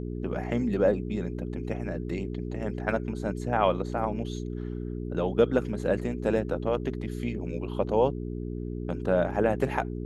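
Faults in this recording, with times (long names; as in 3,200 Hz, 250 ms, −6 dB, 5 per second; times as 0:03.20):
mains hum 60 Hz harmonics 7 −34 dBFS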